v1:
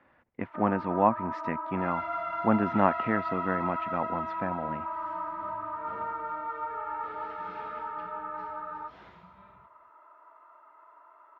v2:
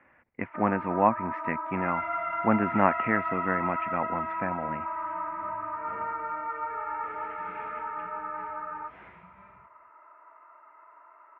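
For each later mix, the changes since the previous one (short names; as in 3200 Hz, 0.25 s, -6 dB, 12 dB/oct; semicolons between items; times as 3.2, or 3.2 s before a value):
master: add resonant high shelf 3200 Hz -11.5 dB, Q 3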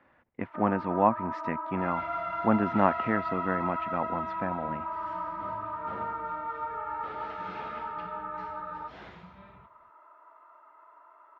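second sound +6.5 dB; master: add resonant high shelf 3200 Hz +11.5 dB, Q 3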